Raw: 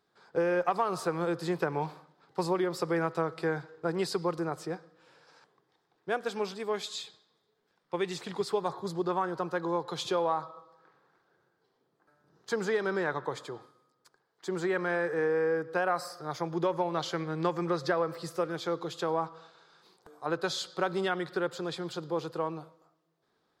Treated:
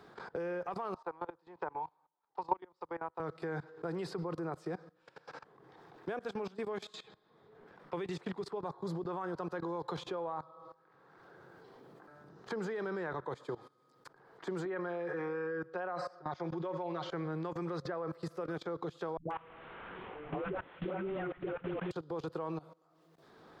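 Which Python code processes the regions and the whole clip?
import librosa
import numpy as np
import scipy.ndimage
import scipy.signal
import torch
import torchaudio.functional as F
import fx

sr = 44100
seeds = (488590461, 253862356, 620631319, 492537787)

y = fx.chain(x, sr, fx.bandpass_edges(low_hz=280.0, high_hz=3900.0),
    fx.peak_eq(hz=910.0, db=14.5, octaves=0.55),
    fx.upward_expand(threshold_db=-35.0, expansion=2.5), at=(0.94, 3.2))
y = fx.chain(y, sr, fx.highpass(hz=270.0, slope=6),
    fx.air_absorb(metres=110.0),
    fx.comb(ms=5.5, depth=0.9), at=(14.65, 17.1))
y = fx.chain(y, sr, fx.delta_mod(bps=16000, step_db=-40.5),
    fx.dispersion(late='highs', ms=138.0, hz=360.0), at=(19.17, 21.91))
y = fx.level_steps(y, sr, step_db=20)
y = fx.high_shelf(y, sr, hz=3300.0, db=-11.0)
y = fx.band_squash(y, sr, depth_pct=70)
y = y * 10.0 ** (3.0 / 20.0)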